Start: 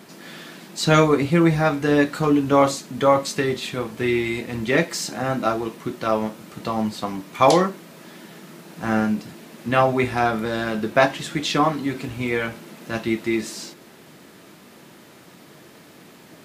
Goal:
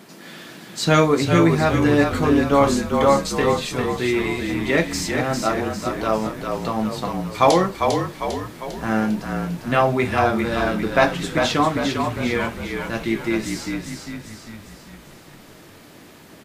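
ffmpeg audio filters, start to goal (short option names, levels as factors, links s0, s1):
-filter_complex "[0:a]asplit=7[s0][s1][s2][s3][s4][s5][s6];[s1]adelay=400,afreqshift=-40,volume=0.562[s7];[s2]adelay=800,afreqshift=-80,volume=0.288[s8];[s3]adelay=1200,afreqshift=-120,volume=0.146[s9];[s4]adelay=1600,afreqshift=-160,volume=0.075[s10];[s5]adelay=2000,afreqshift=-200,volume=0.038[s11];[s6]adelay=2400,afreqshift=-240,volume=0.0195[s12];[s0][s7][s8][s9][s10][s11][s12]amix=inputs=7:normalize=0"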